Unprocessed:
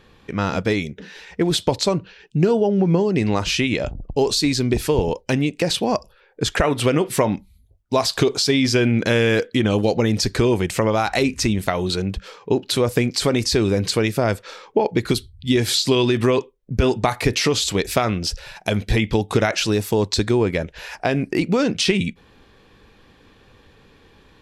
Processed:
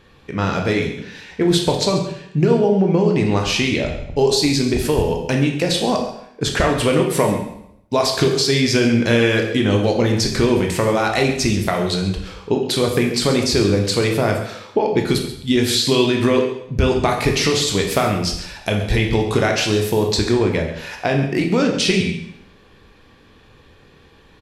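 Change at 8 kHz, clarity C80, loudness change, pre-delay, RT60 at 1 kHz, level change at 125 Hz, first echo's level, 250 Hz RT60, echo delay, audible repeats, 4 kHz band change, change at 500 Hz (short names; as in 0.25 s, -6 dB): +2.0 dB, 8.0 dB, +2.0 dB, 7 ms, 0.75 s, +2.0 dB, -13.5 dB, 0.80 s, 0.135 s, 1, +2.0 dB, +2.0 dB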